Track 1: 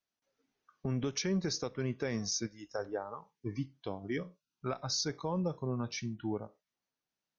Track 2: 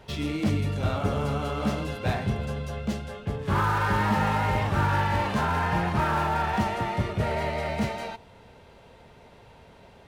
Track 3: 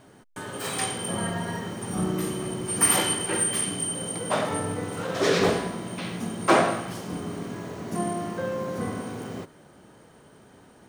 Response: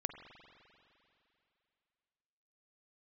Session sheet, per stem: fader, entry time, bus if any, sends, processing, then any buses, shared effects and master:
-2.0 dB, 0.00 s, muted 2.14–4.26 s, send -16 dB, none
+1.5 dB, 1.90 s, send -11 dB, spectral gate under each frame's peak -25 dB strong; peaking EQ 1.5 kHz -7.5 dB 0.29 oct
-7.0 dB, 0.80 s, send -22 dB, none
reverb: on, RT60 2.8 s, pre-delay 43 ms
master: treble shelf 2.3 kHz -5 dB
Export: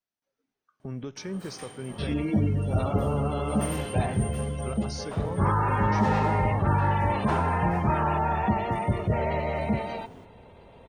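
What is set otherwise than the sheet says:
stem 1: send off; stem 2: send off; stem 3 -7.0 dB -> -14.0 dB

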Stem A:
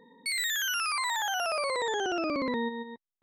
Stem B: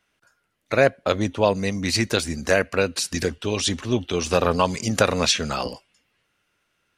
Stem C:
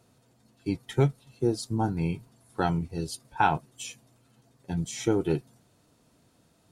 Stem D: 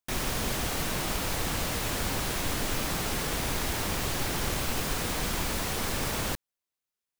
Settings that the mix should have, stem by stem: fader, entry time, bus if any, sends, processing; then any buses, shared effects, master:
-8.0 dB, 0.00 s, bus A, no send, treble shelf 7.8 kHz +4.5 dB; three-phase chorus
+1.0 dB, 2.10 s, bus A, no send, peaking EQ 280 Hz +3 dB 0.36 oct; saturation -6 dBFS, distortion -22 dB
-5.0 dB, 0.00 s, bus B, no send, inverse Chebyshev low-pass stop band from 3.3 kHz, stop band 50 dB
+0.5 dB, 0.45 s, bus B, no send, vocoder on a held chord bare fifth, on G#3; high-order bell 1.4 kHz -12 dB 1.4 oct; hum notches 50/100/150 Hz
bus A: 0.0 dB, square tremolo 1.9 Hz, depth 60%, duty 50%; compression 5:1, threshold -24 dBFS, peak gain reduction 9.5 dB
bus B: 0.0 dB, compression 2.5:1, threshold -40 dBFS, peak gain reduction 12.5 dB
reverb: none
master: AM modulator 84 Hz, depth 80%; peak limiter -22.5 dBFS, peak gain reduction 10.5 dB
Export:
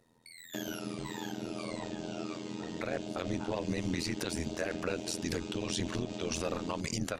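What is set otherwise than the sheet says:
stem C: missing inverse Chebyshev low-pass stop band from 3.3 kHz, stop band 50 dB; stem D +0.5 dB -> +10.0 dB

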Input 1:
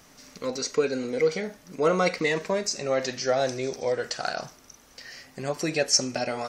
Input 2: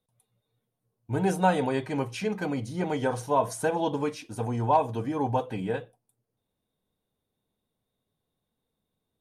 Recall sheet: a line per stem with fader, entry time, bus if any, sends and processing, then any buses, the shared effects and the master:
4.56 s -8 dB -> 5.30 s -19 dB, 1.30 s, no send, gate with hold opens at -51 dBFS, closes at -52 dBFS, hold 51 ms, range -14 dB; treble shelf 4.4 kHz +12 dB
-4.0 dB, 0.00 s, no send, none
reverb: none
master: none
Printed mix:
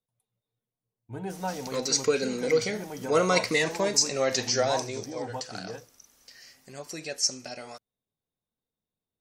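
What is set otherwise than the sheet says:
stem 1 -8.0 dB -> -1.0 dB; stem 2 -4.0 dB -> -10.0 dB

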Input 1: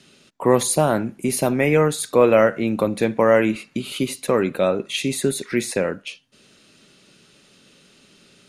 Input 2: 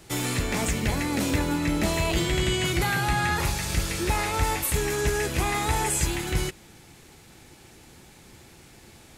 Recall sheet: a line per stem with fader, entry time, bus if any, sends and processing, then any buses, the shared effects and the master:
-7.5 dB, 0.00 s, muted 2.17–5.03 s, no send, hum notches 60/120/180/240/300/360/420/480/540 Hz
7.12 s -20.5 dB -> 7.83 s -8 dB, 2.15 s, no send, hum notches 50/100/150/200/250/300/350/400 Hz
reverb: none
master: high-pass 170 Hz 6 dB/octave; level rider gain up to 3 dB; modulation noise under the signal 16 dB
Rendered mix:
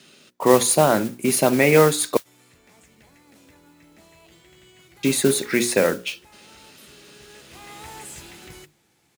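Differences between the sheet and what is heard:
stem 1 -7.5 dB -> +2.0 dB; stem 2 -20.5 dB -> -28.5 dB

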